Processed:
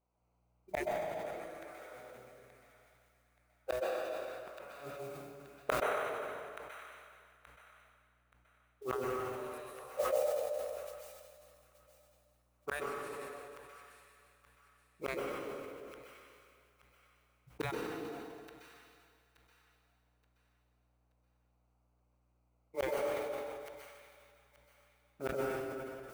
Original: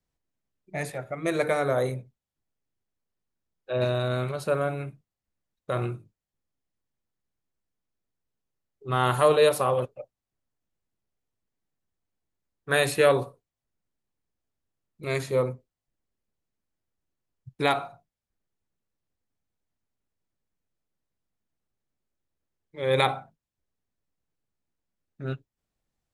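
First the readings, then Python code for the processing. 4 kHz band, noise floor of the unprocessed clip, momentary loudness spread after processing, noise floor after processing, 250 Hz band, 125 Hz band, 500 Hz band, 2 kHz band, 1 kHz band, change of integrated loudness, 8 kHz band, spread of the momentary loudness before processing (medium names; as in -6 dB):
-16.0 dB, under -85 dBFS, 20 LU, -75 dBFS, -11.5 dB, -21.0 dB, -11.0 dB, -11.5 dB, -11.0 dB, -14.0 dB, -11.0 dB, 18 LU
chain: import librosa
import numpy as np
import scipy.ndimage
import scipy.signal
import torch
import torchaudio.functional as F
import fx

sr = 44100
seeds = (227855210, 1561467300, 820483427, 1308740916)

p1 = fx.wiener(x, sr, points=25)
p2 = scipy.signal.sosfilt(scipy.signal.butter(2, 740.0, 'highpass', fs=sr, output='sos'), p1)
p3 = fx.peak_eq(p2, sr, hz=3600.0, db=-7.5, octaves=0.67)
p4 = fx.over_compress(p3, sr, threshold_db=-33.0, ratio=-1.0)
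p5 = p3 + (p4 * 10.0 ** (3.0 / 20.0))
p6 = fx.mod_noise(p5, sr, seeds[0], snr_db=19)
p7 = fx.gate_flip(p6, sr, shuts_db=-25.0, range_db=-37)
p8 = fx.add_hum(p7, sr, base_hz=60, snr_db=34)
p9 = p8 + fx.echo_wet_highpass(p8, sr, ms=876, feedback_pct=31, hz=1500.0, wet_db=-9, dry=0)
p10 = fx.rev_plate(p9, sr, seeds[1], rt60_s=2.1, hf_ratio=0.95, predelay_ms=115, drr_db=-6.5)
p11 = fx.sustainer(p10, sr, db_per_s=28.0)
y = p11 * 10.0 ** (2.5 / 20.0)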